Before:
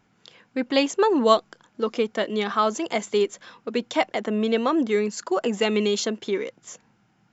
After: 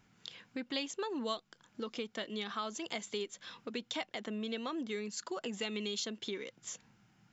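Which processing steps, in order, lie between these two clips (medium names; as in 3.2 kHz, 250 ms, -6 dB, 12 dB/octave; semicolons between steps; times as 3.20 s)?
peaking EQ 570 Hz -7 dB 2.8 oct; compression 2.5:1, threshold -42 dBFS, peak gain reduction 16.5 dB; dynamic bell 3.6 kHz, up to +5 dB, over -60 dBFS, Q 1.9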